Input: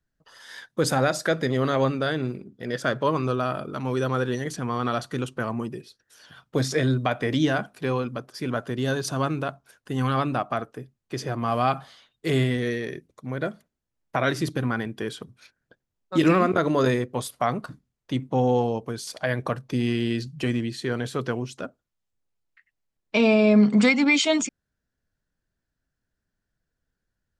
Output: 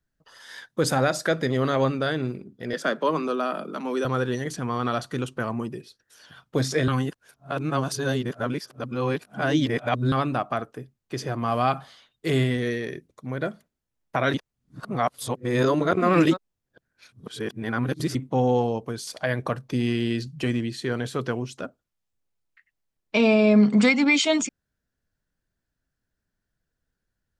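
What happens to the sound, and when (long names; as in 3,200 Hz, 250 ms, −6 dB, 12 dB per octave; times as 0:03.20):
0:02.73–0:04.05: Butterworth high-pass 160 Hz 96 dB per octave
0:06.88–0:10.12: reverse
0:14.34–0:18.15: reverse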